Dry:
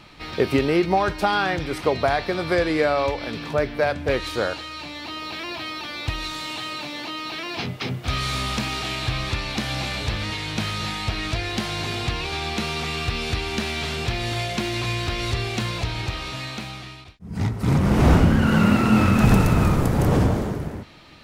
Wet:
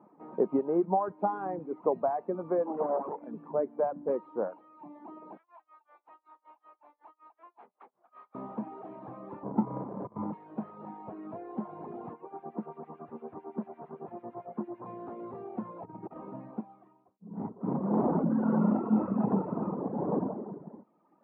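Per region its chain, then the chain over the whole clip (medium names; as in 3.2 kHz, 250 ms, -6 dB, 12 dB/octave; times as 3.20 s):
2.66–3.23 s: CVSD coder 16 kbps + doubling 21 ms -8 dB + loudspeaker Doppler distortion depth 0.98 ms
5.37–8.35 s: high-pass 1.2 kHz + tremolo 5.3 Hz, depth 94%
9.43–10.33 s: RIAA curve playback + compressor with a negative ratio -15 dBFS, ratio -0.5 + sample-rate reducer 1.1 kHz
12.13–14.86 s: one-bit delta coder 32 kbps, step -25.5 dBFS + low-pass 3 kHz + harmonic tremolo 8.9 Hz, crossover 1.7 kHz
15.85–16.61 s: low-pass 3.8 kHz + compressor with a negative ratio -30 dBFS, ratio -0.5 + bass shelf 240 Hz +9.5 dB
17.93–18.79 s: distance through air 130 m + hum notches 50/100/150/200/250/300/350/400/450 Hz + level flattener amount 50%
whole clip: reverb removal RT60 1.2 s; elliptic band-pass 190–990 Hz, stop band 70 dB; trim -5.5 dB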